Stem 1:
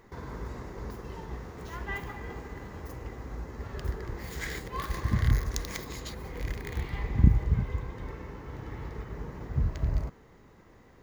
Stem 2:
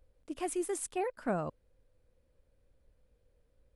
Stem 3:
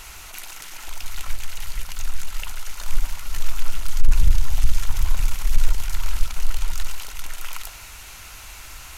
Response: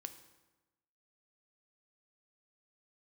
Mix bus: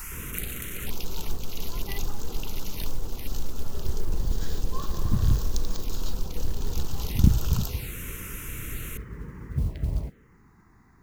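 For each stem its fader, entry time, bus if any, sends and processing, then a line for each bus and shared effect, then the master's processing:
+0.5 dB, 0.00 s, no bus, no send, bell 190 Hz +2.5 dB
off
+1.0 dB, 0.00 s, bus A, no send, octaver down 2 oct, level +3 dB
bus A: 0.0 dB, high shelf 11000 Hz +11.5 dB; compressor 5:1, threshold -21 dBFS, peak gain reduction 15.5 dB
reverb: off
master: envelope phaser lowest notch 520 Hz, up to 2100 Hz, full sweep at -20 dBFS; modulation noise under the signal 32 dB

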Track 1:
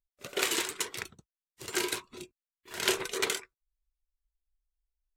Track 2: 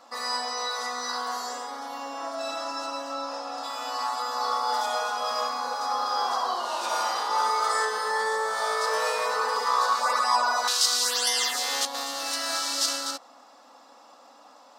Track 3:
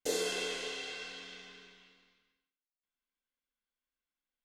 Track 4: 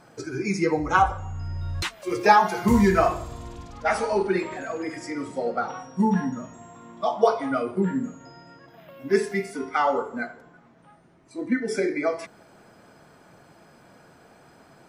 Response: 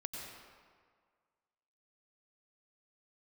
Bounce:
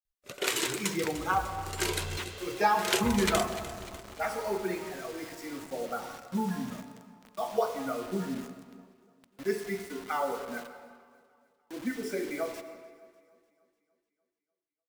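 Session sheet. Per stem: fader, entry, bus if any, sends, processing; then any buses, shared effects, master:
-0.5 dB, 0.05 s, no send, echo send -14 dB, dry
off
-7.5 dB, 1.70 s, no send, no echo send, attack slew limiter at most 440 dB/s
-12.5 dB, 0.35 s, send -3.5 dB, echo send -19.5 dB, requantised 6-bit, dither none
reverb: on, RT60 1.8 s, pre-delay 85 ms
echo: feedback echo 0.298 s, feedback 53%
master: bell 560 Hz +2 dB 0.25 oct

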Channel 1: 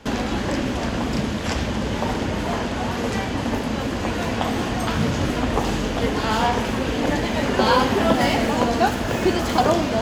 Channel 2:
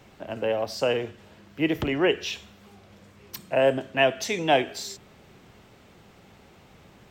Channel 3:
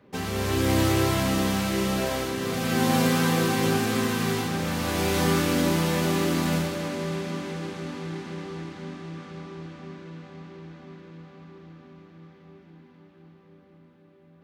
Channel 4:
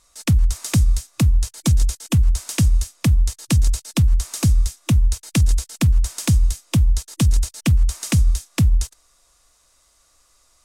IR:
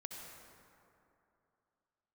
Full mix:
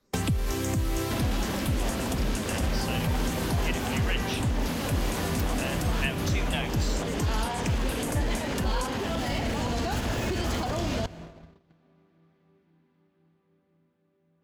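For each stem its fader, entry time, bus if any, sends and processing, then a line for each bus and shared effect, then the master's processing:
-7.5 dB, 1.05 s, no bus, send -12.5 dB, limiter -16 dBFS, peak gain reduction 11 dB; soft clip -18 dBFS, distortion -20 dB
-1.5 dB, 2.05 s, no bus, no send, Bessel high-pass 2000 Hz
-11.5 dB, 0.00 s, bus A, send -9.5 dB, dry
-9.5 dB, 0.00 s, bus A, no send, short-mantissa float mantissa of 6-bit; phaser stages 6, 0.32 Hz, lowest notch 100–3800 Hz
bus A: 0.0 dB, bell 12000 Hz +4.5 dB 0.38 oct; limiter -22.5 dBFS, peak gain reduction 8 dB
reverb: on, RT60 2.8 s, pre-delay 58 ms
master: gate -50 dBFS, range -35 dB; three-band squash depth 100%

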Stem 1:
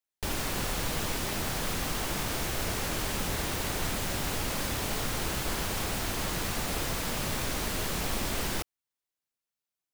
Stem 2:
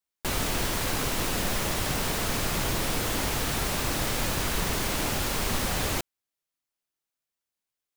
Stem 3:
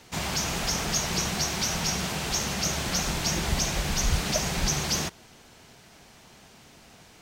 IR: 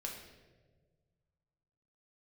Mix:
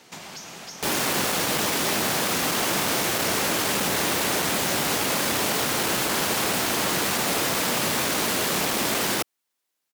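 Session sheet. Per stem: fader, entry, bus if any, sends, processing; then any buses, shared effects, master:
+1.0 dB, 0.60 s, no send, sine folder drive 6 dB, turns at -17.5 dBFS
off
+1.0 dB, 0.00 s, no send, compressor 5:1, threshold -38 dBFS, peak gain reduction 16.5 dB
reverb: off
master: HPF 200 Hz 12 dB/oct

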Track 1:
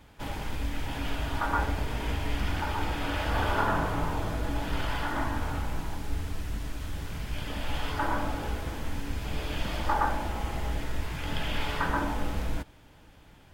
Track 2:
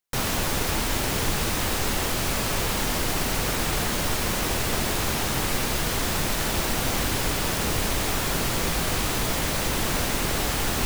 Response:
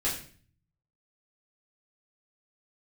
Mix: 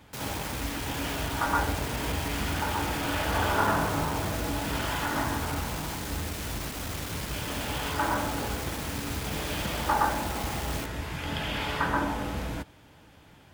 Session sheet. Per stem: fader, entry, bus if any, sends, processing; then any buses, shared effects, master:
+2.0 dB, 0.00 s, no send, dry
-6.0 dB, 0.00 s, no send, overloaded stage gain 29 dB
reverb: off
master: HPF 72 Hz 12 dB/oct

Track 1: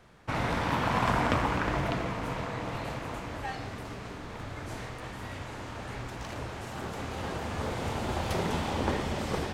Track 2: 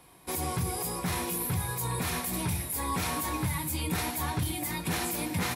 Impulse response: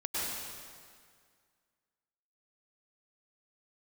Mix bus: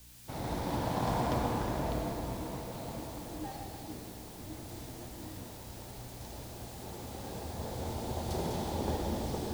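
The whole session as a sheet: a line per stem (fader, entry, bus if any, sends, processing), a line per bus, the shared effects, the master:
-9.5 dB, 0.00 s, send -3.5 dB, band shelf 1800 Hz -10 dB; requantised 8-bit, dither triangular; hum 60 Hz, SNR 12 dB
-4.0 dB, 0.00 s, no send, band-pass 310 Hz, Q 3.6; ensemble effect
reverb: on, RT60 2.0 s, pre-delay 93 ms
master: three-band expander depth 40%

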